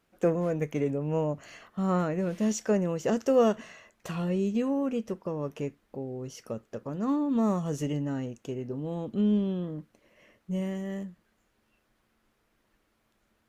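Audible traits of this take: noise floor -73 dBFS; spectral tilt -7.0 dB/octave

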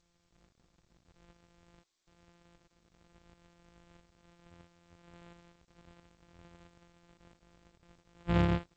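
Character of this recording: a buzz of ramps at a fixed pitch in blocks of 256 samples; tremolo saw up 1.5 Hz, depth 45%; G.722

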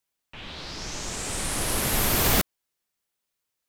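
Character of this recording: noise floor -82 dBFS; spectral tilt -2.5 dB/octave

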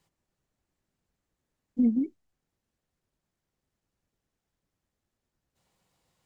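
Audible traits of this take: noise floor -86 dBFS; spectral tilt -10.0 dB/octave

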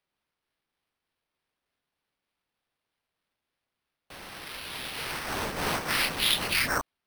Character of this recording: phasing stages 2, 3.3 Hz, lowest notch 460–4300 Hz; aliases and images of a low sample rate 7.1 kHz, jitter 0%

